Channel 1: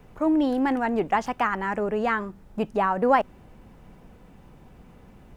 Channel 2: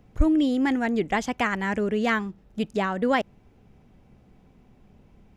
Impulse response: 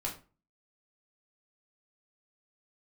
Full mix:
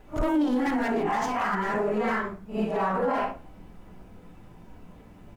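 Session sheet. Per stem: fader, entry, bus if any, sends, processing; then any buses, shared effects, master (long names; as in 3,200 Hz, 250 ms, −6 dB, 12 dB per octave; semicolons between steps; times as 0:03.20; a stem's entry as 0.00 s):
+0.5 dB, 0.00 s, send −3.5 dB, random phases in long frames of 200 ms; flanger 1.6 Hz, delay 6 ms, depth 9.5 ms, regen −71%
−9.5 dB, 2.2 ms, polarity flipped, send −23.5 dB, leveller curve on the samples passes 5; automatic ducking −22 dB, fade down 2.00 s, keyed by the first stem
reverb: on, RT60 0.35 s, pre-delay 3 ms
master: brickwall limiter −18 dBFS, peak gain reduction 10.5 dB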